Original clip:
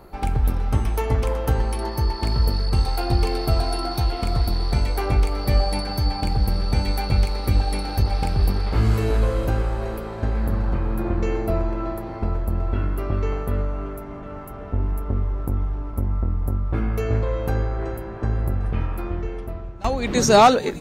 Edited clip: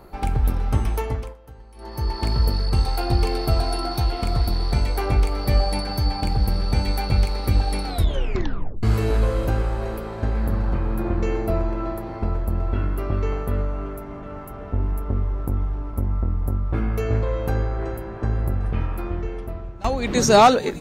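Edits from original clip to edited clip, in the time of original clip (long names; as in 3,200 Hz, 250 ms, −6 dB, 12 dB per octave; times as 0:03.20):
0:00.92–0:02.18: duck −23 dB, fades 0.44 s
0:07.86: tape stop 0.97 s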